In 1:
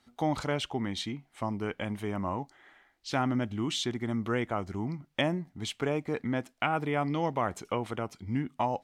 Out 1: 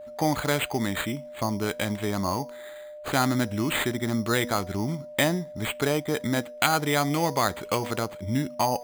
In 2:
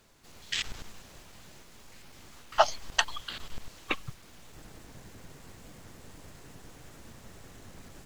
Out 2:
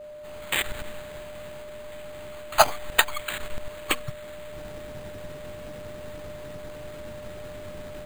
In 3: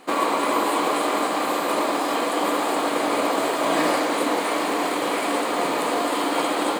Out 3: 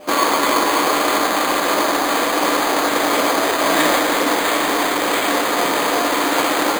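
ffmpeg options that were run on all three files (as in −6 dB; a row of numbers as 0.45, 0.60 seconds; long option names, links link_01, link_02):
-filter_complex "[0:a]bandreject=frequency=243.3:width_type=h:width=4,bandreject=frequency=486.6:width_type=h:width=4,bandreject=frequency=729.9:width_type=h:width=4,bandreject=frequency=973.2:width_type=h:width=4,adynamicequalizer=threshold=0.00708:dfrequency=1800:dqfactor=1.5:tfrequency=1800:tqfactor=1.5:attack=5:release=100:ratio=0.375:range=3.5:mode=boostabove:tftype=bell,asplit=2[link_01][link_02];[link_02]acompressor=threshold=-38dB:ratio=6,volume=-3dB[link_03];[link_01][link_03]amix=inputs=2:normalize=0,acrusher=samples=8:mix=1:aa=0.000001,aeval=exprs='val(0)+0.00794*sin(2*PI*600*n/s)':channel_layout=same,volume=3dB"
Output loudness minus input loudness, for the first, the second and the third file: +5.5, +1.0, +6.0 LU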